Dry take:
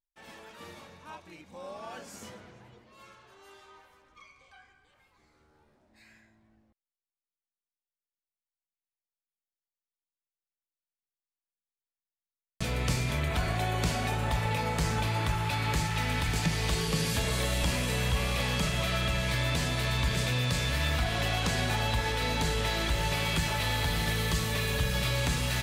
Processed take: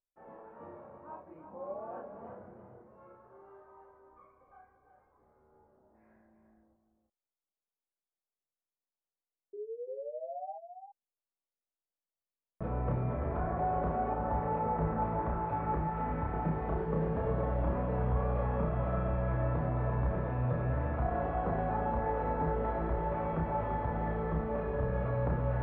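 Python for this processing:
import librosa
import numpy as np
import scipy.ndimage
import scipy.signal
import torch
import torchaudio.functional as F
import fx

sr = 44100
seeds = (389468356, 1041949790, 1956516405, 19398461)

y = scipy.signal.sosfilt(scipy.signal.butter(4, 1300.0, 'lowpass', fs=sr, output='sos'), x)
y = fx.peak_eq(y, sr, hz=540.0, db=8.0, octaves=1.7)
y = fx.spec_paint(y, sr, seeds[0], shape='rise', start_s=9.53, length_s=1.02, low_hz=400.0, high_hz=810.0, level_db=-36.0)
y = fx.doubler(y, sr, ms=31.0, db=-2.5)
y = y + 10.0 ** (-8.0 / 20.0) * np.pad(y, (int(340 * sr / 1000.0), 0))[:len(y)]
y = y * librosa.db_to_amplitude(-7.0)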